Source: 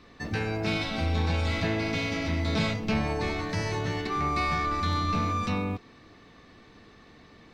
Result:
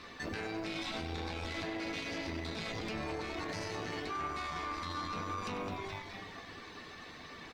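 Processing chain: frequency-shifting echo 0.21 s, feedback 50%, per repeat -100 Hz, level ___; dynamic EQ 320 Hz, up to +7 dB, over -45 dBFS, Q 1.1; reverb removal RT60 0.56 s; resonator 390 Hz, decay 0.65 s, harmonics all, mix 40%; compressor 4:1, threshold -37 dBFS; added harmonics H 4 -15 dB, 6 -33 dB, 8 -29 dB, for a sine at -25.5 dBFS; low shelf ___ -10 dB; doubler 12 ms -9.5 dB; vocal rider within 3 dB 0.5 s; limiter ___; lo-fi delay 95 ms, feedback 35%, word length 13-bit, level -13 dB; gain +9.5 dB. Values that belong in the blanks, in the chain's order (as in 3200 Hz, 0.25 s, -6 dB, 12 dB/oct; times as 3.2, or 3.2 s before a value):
-11 dB, 460 Hz, -39 dBFS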